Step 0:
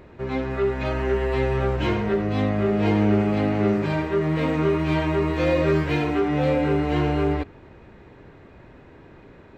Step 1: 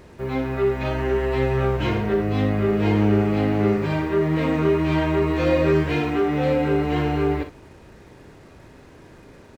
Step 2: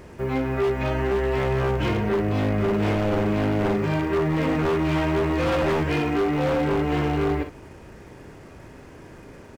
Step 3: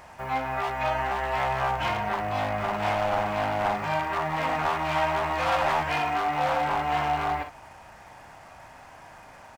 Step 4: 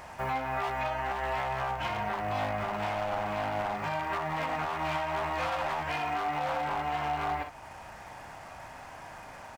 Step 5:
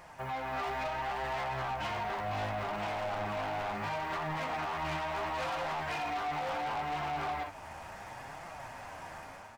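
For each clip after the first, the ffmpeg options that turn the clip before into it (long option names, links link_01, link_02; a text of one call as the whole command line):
ffmpeg -i in.wav -filter_complex "[0:a]acrusher=bits=8:mix=0:aa=0.5,asplit=2[link_01][link_02];[link_02]aecho=0:1:38|60:0.316|0.282[link_03];[link_01][link_03]amix=inputs=2:normalize=0" out.wav
ffmpeg -i in.wav -af "equalizer=frequency=3900:width_type=o:width=0.31:gain=-6.5,aeval=exprs='0.15*(abs(mod(val(0)/0.15+3,4)-2)-1)':channel_layout=same,acompressor=threshold=-27dB:ratio=1.5,volume=2.5dB" out.wav
ffmpeg -i in.wav -af "lowshelf=frequency=550:width_type=q:width=3:gain=-10.5" out.wav
ffmpeg -i in.wav -af "alimiter=level_in=0.5dB:limit=-24dB:level=0:latency=1:release=432,volume=-0.5dB,volume=2dB" out.wav
ffmpeg -i in.wav -af "dynaudnorm=framelen=150:gausssize=5:maxgain=7dB,flanger=delay=5.6:depth=7.1:regen=44:speed=0.71:shape=triangular,asoftclip=type=tanh:threshold=-28.5dB,volume=-2.5dB" out.wav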